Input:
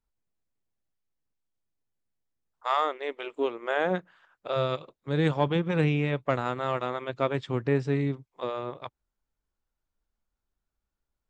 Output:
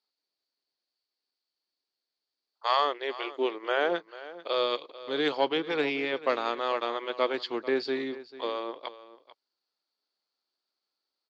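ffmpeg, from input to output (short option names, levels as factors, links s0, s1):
-filter_complex "[0:a]highpass=f=320:w=0.5412,highpass=f=320:w=1.3066,asetrate=41625,aresample=44100,atempo=1.05946,lowpass=f=4500:t=q:w=11,asplit=2[s0][s1];[s1]aecho=0:1:442:0.15[s2];[s0][s2]amix=inputs=2:normalize=0"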